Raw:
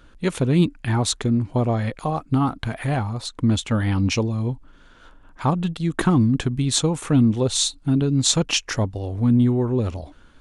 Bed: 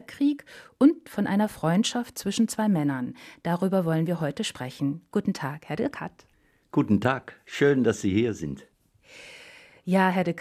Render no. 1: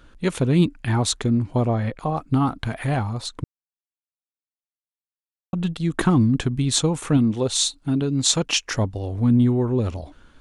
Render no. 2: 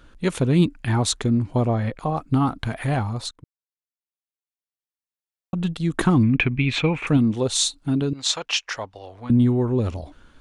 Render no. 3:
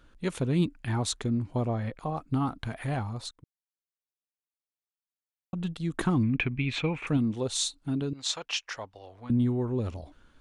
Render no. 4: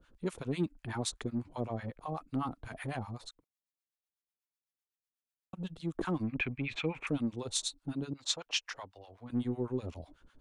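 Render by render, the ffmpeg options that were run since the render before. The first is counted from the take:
-filter_complex "[0:a]asettb=1/sr,asplit=3[s0][s1][s2];[s0]atrim=end=1.684[s3];[s1]atrim=start=1.68:end=2.17,asetpts=PTS-STARTPTS,afade=t=in:d=0.004:c=qsin,afade=t=out:st=0.486:d=0.004:c=qsin,highshelf=f=3400:g=-9[s4];[s2]atrim=start=2.166[s5];[s3][s4]acrossfade=d=0.004:c1=hsin:c2=qsin[s6];[s6][s5]acrossfade=d=0.004:c1=qsin:c2=hsin,asettb=1/sr,asplit=3[s7][s8][s9];[s7]atrim=end=7.174[s10];[s8]atrim=start=7.17:end=8.73,asetpts=PTS-STARTPTS,afade=t=in:d=0.004:c=qsin,afade=t=out:st=1.556:d=0.004:c=qsin,lowshelf=f=150:g=-7.5[s11];[s9]atrim=start=8.726[s12];[s10][s11]acrossfade=d=0.004:c1=hsin:c2=qsin[s13];[s13][s12]acrossfade=d=0.004:c1=qsin:c2=hsin,asplit=3[s14][s15][s16];[s14]atrim=end=3.44,asetpts=PTS-STARTPTS,afade=t=out:st=3.436:d=0.004:c=hsin[s17];[s15]atrim=start=3.44:end=5.53,asetpts=PTS-STARTPTS,volume=0[s18];[s16]atrim=start=5.53,asetpts=PTS-STARTPTS,afade=t=in:d=0.004:c=hsin[s19];[s17][s18][s19]concat=n=3:v=0:a=1"
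-filter_complex "[0:a]asettb=1/sr,asplit=3[s0][s1][s2];[s0]atrim=end=6.234[s3];[s1]atrim=start=6.23:end=7.07,asetpts=PTS-STARTPTS,afade=t=in:d=0.004:c=qsin,afade=t=out:st=0.836:d=0.004:c=qsin,lowpass=f=2400:t=q:w=11[s4];[s2]atrim=start=7.066[s5];[s3][s4]acrossfade=d=0.004:c1=hsin:c2=qsin[s6];[s6][s5]acrossfade=d=0.004:c1=qsin:c2=hsin,asettb=1/sr,asplit=3[s7][s8][s9];[s7]atrim=end=8.134[s10];[s8]atrim=start=8.13:end=9.3,asetpts=PTS-STARTPTS,afade=t=in:d=0.004:c=qsin,afade=t=out:st=1.166:d=0.004:c=qsin,acrossover=split=560 5700:gain=0.1 1 0.224[s11][s12][s13];[s11][s12][s13]amix=inputs=3:normalize=0[s14];[s9]atrim=start=9.296[s15];[s10][s14]acrossfade=d=0.004:c1=hsin:c2=qsin[s16];[s16][s15]acrossfade=d=0.004:c1=qsin:c2=hsin,asplit=2[s17][s18];[s17]atrim=end=3.31,asetpts=PTS-STARTPTS,afade=t=out:st=3.306:d=0.004:c=hsin:silence=0.0891251[s19];[s18]atrim=start=3.31,asetpts=PTS-STARTPTS,afade=t=in:d=2.36:silence=0.0891251[s20];[s19][s20]concat=n=2:v=0:a=1"
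-af "volume=0.398"
-filter_complex "[0:a]acrossover=split=750[s0][s1];[s0]aeval=exprs='val(0)*(1-1/2+1/2*cos(2*PI*8*n/s))':c=same[s2];[s1]aeval=exprs='val(0)*(1-1/2-1/2*cos(2*PI*8*n/s))':c=same[s3];[s2][s3]amix=inputs=2:normalize=0,acrossover=split=220|2900[s4][s5][s6];[s4]asoftclip=type=tanh:threshold=0.0112[s7];[s7][s5][s6]amix=inputs=3:normalize=0"

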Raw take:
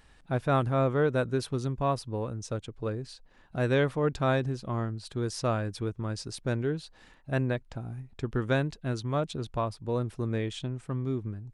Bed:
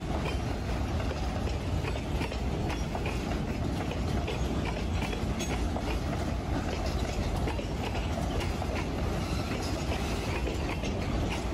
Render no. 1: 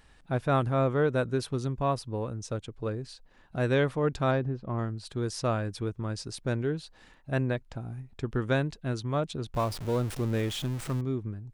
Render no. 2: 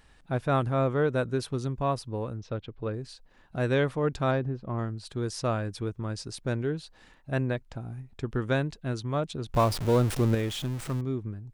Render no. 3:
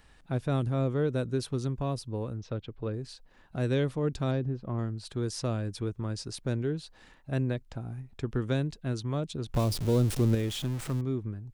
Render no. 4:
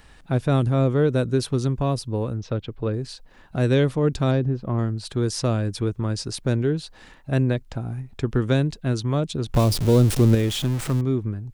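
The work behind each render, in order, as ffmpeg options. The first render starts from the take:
-filter_complex "[0:a]asettb=1/sr,asplit=3[s0][s1][s2];[s0]atrim=end=4.314[s3];[s1]atrim=start=4.31:end=4.79,asetpts=PTS-STARTPTS,afade=t=in:d=0.004:c=qsin,afade=t=out:st=0.476:d=0.004:c=qsin,adynamicsmooth=sensitivity=0.5:basefreq=1900[s4];[s2]atrim=start=4.786[s5];[s3][s4]acrossfade=d=0.004:c1=hsin:c2=qsin[s6];[s6][s5]acrossfade=d=0.004:c1=qsin:c2=hsin,asettb=1/sr,asplit=3[s7][s8][s9];[s7]atrim=end=9.544[s10];[s8]atrim=start=9.54:end=11.01,asetpts=PTS-STARTPTS,afade=t=in:d=0.004:c=qsin,afade=t=out:st=1.466:d=0.004:c=qsin,aeval=exprs='val(0)+0.5*0.0178*sgn(val(0))':c=same[s11];[s9]atrim=start=11.006[s12];[s10][s11]acrossfade=d=0.004:c1=hsin:c2=qsin[s13];[s13][s12]acrossfade=d=0.004:c1=qsin:c2=hsin"
-filter_complex "[0:a]asplit=3[s0][s1][s2];[s0]afade=t=out:st=2.37:d=0.02[s3];[s1]lowpass=f=4100:w=0.5412,lowpass=f=4100:w=1.3066,afade=t=in:st=2.37:d=0.02,afade=t=out:st=2.92:d=0.02[s4];[s2]afade=t=in:st=2.92:d=0.02[s5];[s3][s4][s5]amix=inputs=3:normalize=0,asettb=1/sr,asplit=3[s6][s7][s8];[s6]atrim=end=9.494[s9];[s7]atrim=start=9.49:end=10.35,asetpts=PTS-STARTPTS,afade=t=in:d=0.004:c=qsin,afade=t=out:st=0.856:d=0.004:c=qsin,acontrast=38[s10];[s8]atrim=start=10.346[s11];[s9][s10]acrossfade=d=0.004:c1=hsin:c2=qsin[s12];[s12][s11]acrossfade=d=0.004:c1=qsin:c2=hsin"
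-filter_complex "[0:a]acrossover=split=460|3000[s0][s1][s2];[s1]acompressor=threshold=0.00708:ratio=2.5[s3];[s0][s3][s2]amix=inputs=3:normalize=0"
-af "volume=2.66"

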